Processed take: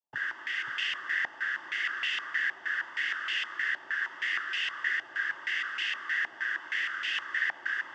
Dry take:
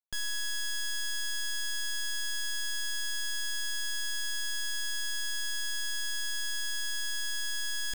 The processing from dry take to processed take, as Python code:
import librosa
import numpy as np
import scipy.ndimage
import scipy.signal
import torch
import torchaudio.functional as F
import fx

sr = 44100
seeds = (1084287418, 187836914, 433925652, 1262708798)

y = fx.noise_vocoder(x, sr, seeds[0], bands=16)
y = y + 10.0 ** (-4.5 / 20.0) * np.pad(y, (int(539 * sr / 1000.0), 0))[:len(y)]
y = fx.filter_held_lowpass(y, sr, hz=6.4, low_hz=820.0, high_hz=2600.0)